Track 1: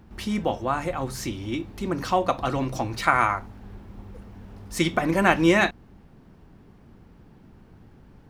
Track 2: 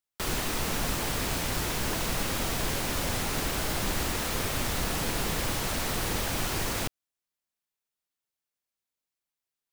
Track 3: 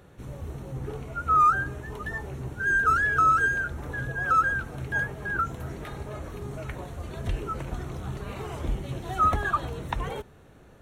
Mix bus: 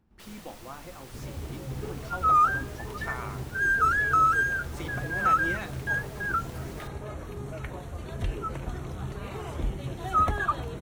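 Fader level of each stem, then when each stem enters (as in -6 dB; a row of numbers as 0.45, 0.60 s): -17.5, -18.5, -1.0 dB; 0.00, 0.00, 0.95 s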